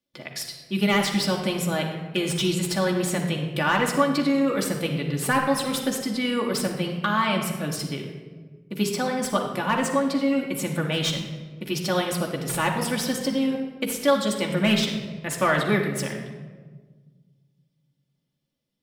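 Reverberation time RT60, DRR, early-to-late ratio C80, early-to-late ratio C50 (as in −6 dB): 1.5 s, 0.0 dB, 7.0 dB, 5.0 dB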